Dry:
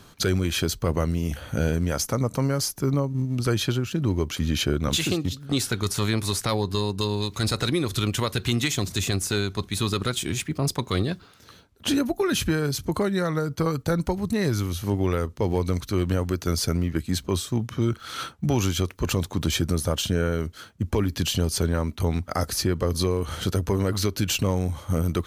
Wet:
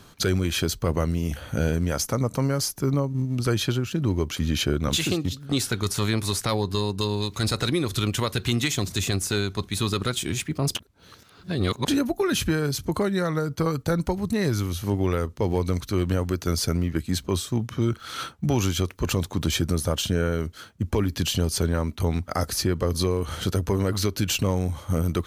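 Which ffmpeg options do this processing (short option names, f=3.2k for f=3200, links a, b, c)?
-filter_complex "[0:a]asplit=3[a][b][c];[a]atrim=end=10.752[d];[b]atrim=start=10.748:end=11.882,asetpts=PTS-STARTPTS,areverse[e];[c]atrim=start=11.878[f];[d][e]acrossfade=d=0.004:c1=hsin:c2=hsin[g];[g][f]acrossfade=d=0.004:c1=hsin:c2=hsin"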